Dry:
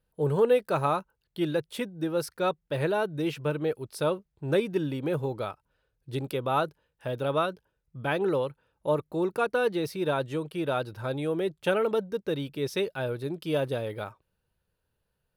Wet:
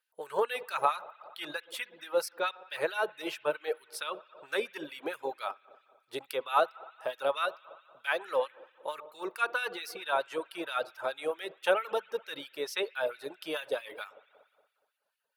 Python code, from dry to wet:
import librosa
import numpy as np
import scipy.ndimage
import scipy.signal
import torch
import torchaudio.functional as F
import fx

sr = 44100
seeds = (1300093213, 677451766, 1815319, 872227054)

y = fx.low_shelf(x, sr, hz=400.0, db=-10.5, at=(7.48, 8.25))
y = fx.rev_spring(y, sr, rt60_s=1.5, pass_ms=(59,), chirp_ms=50, drr_db=9.0)
y = fx.dereverb_blind(y, sr, rt60_s=0.61)
y = fx.filter_lfo_highpass(y, sr, shape='sine', hz=4.5, low_hz=560.0, high_hz=2200.0, q=1.4)